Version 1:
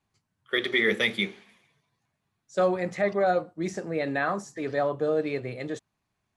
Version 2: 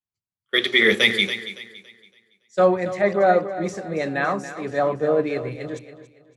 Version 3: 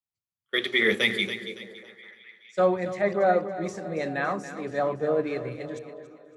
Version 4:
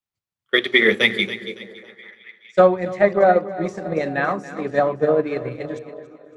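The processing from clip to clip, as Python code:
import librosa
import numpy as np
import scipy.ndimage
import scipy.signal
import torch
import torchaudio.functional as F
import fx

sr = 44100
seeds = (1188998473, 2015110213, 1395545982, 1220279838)

y1 = fx.echo_feedback(x, sr, ms=281, feedback_pct=53, wet_db=-9.5)
y1 = fx.band_widen(y1, sr, depth_pct=70)
y1 = y1 * 10.0 ** (4.5 / 20.0)
y2 = fx.dynamic_eq(y1, sr, hz=5100.0, q=0.88, threshold_db=-31.0, ratio=4.0, max_db=-4)
y2 = fx.echo_stepped(y2, sr, ms=206, hz=160.0, octaves=0.7, feedback_pct=70, wet_db=-10.0)
y2 = y2 * 10.0 ** (-5.0 / 20.0)
y3 = fx.high_shelf(y2, sr, hz=5400.0, db=-9.0)
y3 = fx.transient(y3, sr, attack_db=6, sustain_db=-3)
y3 = y3 * 10.0 ** (5.5 / 20.0)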